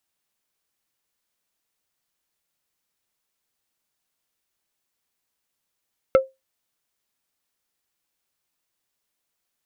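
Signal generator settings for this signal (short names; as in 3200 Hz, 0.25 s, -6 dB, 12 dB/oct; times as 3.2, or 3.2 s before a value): wood hit plate, lowest mode 530 Hz, decay 0.20 s, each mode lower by 8 dB, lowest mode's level -7.5 dB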